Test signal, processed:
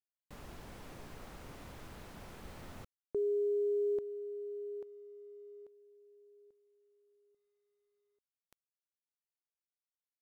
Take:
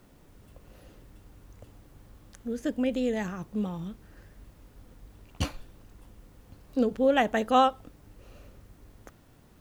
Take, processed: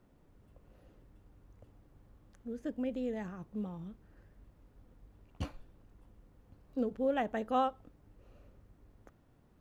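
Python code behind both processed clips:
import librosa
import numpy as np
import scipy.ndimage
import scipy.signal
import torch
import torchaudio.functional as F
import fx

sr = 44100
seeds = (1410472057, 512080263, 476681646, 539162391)

y = fx.quant_companded(x, sr, bits=8)
y = fx.high_shelf(y, sr, hz=2400.0, db=-11.0)
y = y * 10.0 ** (-8.0 / 20.0)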